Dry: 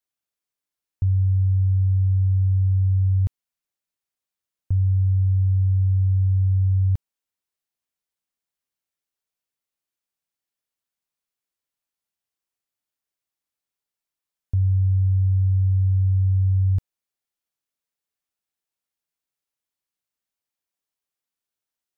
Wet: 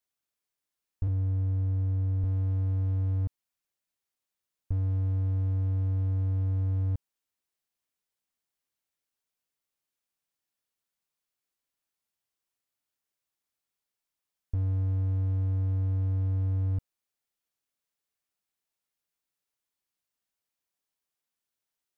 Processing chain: 1.07–2.24 s: feedback comb 240 Hz, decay 0.16 s, harmonics all, mix 60%; slew-rate limiter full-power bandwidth 4.7 Hz

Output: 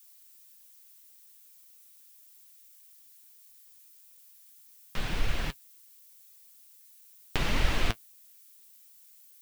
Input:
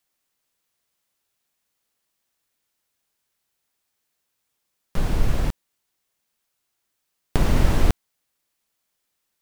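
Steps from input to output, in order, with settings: peaking EQ 2.8 kHz +14 dB 2.5 oct; added noise violet -45 dBFS; flange 1.7 Hz, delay 1.2 ms, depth 8.1 ms, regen +45%; trim -7 dB

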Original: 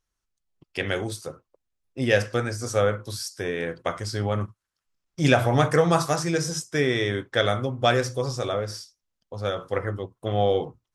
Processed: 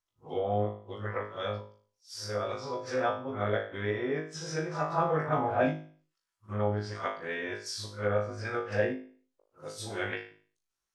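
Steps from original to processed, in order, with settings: reverse the whole clip; low-pass that closes with the level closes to 1.2 kHz, closed at -20.5 dBFS; bass shelf 290 Hz -12 dB; flutter echo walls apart 3.3 m, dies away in 0.41 s; endings held to a fixed fall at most 130 dB/s; trim -5 dB

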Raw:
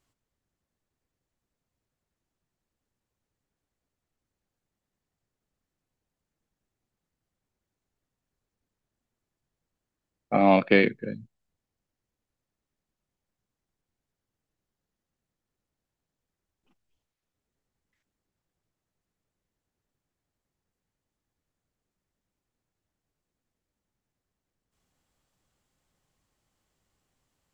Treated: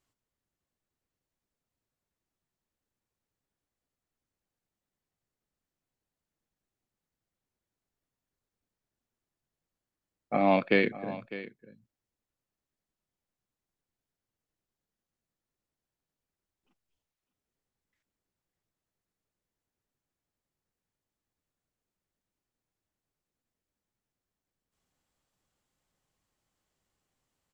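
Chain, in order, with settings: bass shelf 190 Hz -3.5 dB; delay 603 ms -15.5 dB; trim -4 dB

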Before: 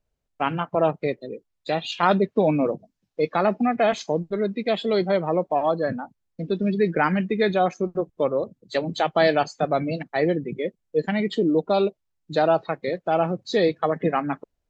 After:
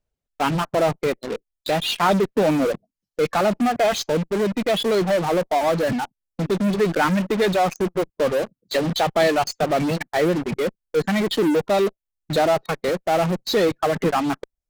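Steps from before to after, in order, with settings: reverb removal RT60 0.98 s; in parallel at -9 dB: fuzz box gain 44 dB, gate -41 dBFS; on the sum: trim -2 dB

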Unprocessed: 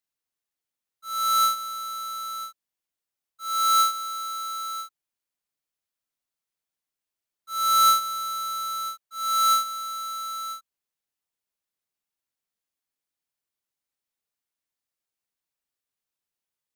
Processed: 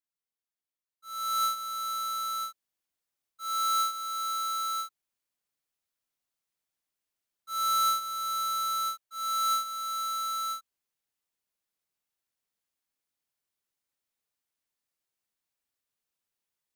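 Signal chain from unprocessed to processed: gain riding within 5 dB 0.5 s; trim -4.5 dB

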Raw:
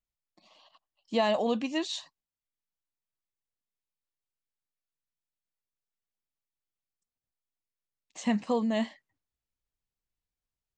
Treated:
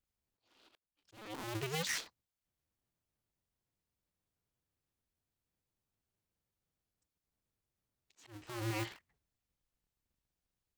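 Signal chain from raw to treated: cycle switcher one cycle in 2, inverted; dynamic bell 600 Hz, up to -7 dB, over -41 dBFS, Q 0.97; peak limiter -27.5 dBFS, peak gain reduction 11.5 dB; 8.31–8.82 s: doubling 26 ms -7.5 dB; slow attack 653 ms; trim +1 dB

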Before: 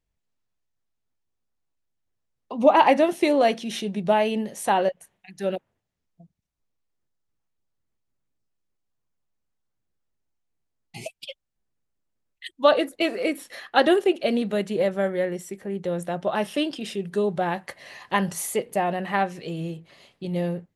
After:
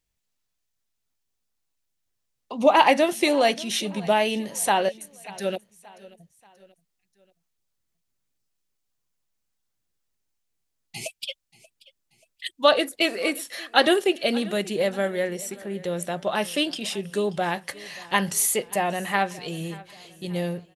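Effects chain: treble shelf 2.1 kHz +11 dB; on a send: feedback delay 583 ms, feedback 45%, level -21 dB; on the sum: trim -2 dB

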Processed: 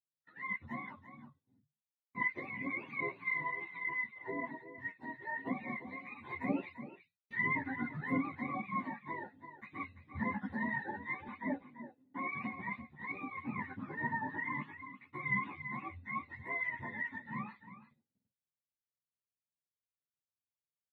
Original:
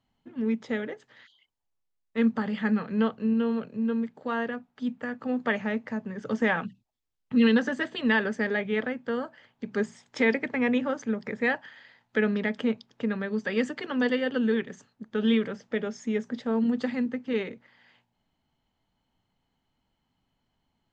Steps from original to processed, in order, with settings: spectrum inverted on a logarithmic axis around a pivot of 680 Hz; 11.27–12.32 s: three-band isolator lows -13 dB, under 200 Hz, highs -12 dB, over 3.4 kHz; gate -53 dBFS, range -25 dB; on a send: delay 340 ms -12 dB; on the sum: three-phase chorus; trim -6.5 dB

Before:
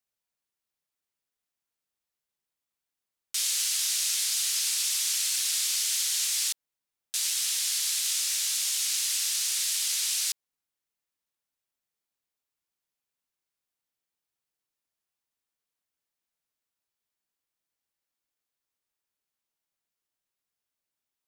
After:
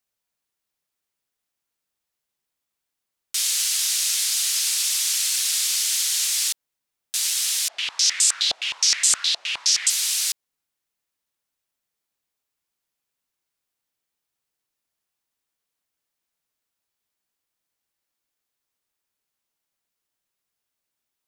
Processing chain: 7.68–9.90 s: step-sequenced low-pass 9.6 Hz 690–7900 Hz; trim +5 dB

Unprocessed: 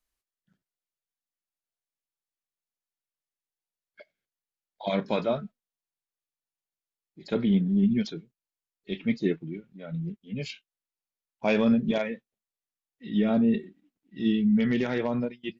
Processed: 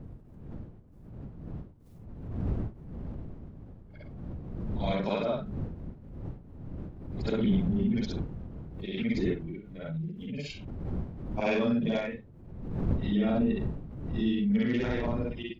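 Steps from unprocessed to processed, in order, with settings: short-time spectra conjugated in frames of 136 ms; wind noise 160 Hz -39 dBFS; swell ahead of each attack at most 49 dB/s

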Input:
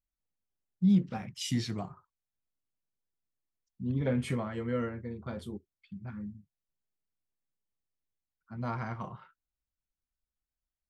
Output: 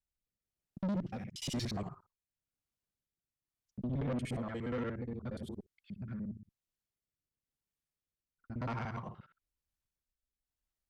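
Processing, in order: time reversed locally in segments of 59 ms; rotary cabinet horn 1 Hz; valve stage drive 33 dB, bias 0.2; trim +1.5 dB

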